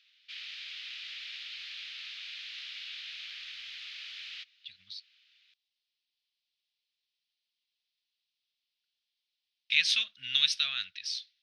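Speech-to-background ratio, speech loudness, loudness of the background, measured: 13.0 dB, -28.0 LUFS, -41.0 LUFS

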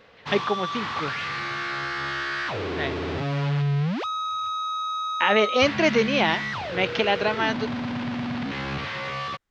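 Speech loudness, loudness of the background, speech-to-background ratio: -24.0 LUFS, -28.5 LUFS, 4.5 dB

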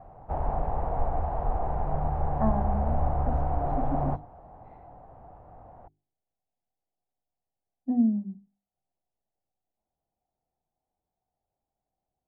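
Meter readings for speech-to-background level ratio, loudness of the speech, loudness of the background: -0.5 dB, -31.0 LUFS, -30.5 LUFS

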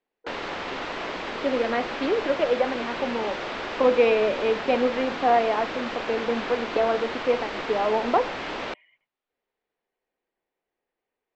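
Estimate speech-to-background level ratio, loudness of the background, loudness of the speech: 6.5 dB, -31.5 LUFS, -25.0 LUFS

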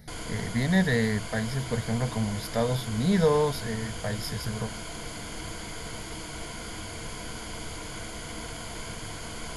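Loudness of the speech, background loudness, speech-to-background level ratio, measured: -28.0 LUFS, -37.5 LUFS, 9.5 dB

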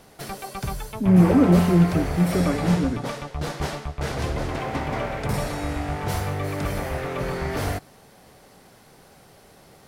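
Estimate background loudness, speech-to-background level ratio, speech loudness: -28.5 LUFS, 9.0 dB, -19.5 LUFS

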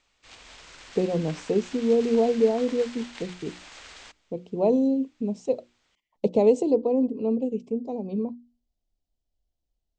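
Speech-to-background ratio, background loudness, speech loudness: 18.0 dB, -43.5 LUFS, -25.5 LUFS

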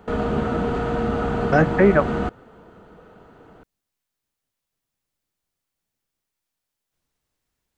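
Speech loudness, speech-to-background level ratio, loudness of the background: -19.0 LUFS, 5.0 dB, -24.0 LUFS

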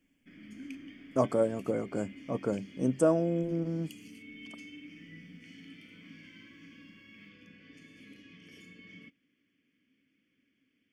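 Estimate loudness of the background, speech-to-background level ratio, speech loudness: -50.0 LUFS, 19.0 dB, -31.0 LUFS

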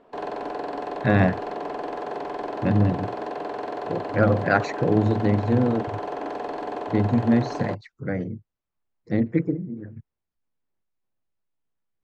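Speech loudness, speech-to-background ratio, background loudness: -24.0 LUFS, 8.0 dB, -32.0 LUFS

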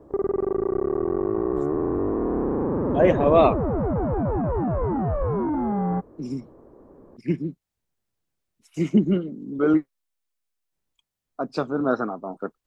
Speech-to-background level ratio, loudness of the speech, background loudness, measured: 1.5 dB, -23.5 LUFS, -25.0 LUFS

